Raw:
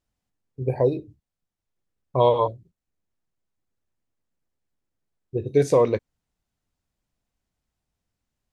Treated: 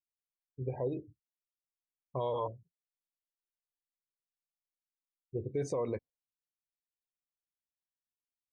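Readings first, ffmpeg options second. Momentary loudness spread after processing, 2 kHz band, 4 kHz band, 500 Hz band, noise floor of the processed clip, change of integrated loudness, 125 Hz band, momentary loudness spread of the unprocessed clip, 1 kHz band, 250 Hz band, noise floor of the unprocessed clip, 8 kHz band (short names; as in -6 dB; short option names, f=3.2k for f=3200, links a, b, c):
9 LU, -15.5 dB, -16.0 dB, -15.0 dB, under -85 dBFS, -14.5 dB, -12.5 dB, 12 LU, -15.0 dB, -12.0 dB, under -85 dBFS, -11.0 dB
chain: -af "afftdn=nr=26:nf=-40,alimiter=limit=-17dB:level=0:latency=1:release=48,volume=-8.5dB"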